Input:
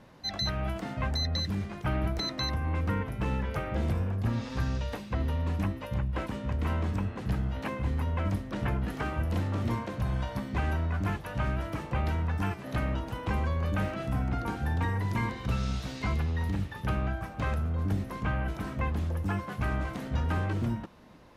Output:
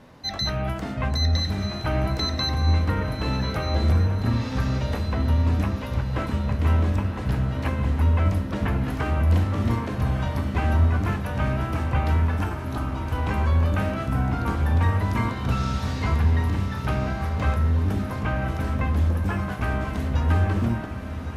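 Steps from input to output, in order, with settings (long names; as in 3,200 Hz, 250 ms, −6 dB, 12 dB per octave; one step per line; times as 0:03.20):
0:12.44–0:13.12: phaser with its sweep stopped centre 550 Hz, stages 6
feedback delay with all-pass diffusion 1,162 ms, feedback 41%, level −7.5 dB
on a send at −8 dB: convolution reverb RT60 0.80 s, pre-delay 6 ms
on the sum: level +4.5 dB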